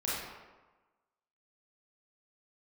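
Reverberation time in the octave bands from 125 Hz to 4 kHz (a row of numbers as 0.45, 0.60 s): 1.1, 1.1, 1.2, 1.3, 1.0, 0.75 s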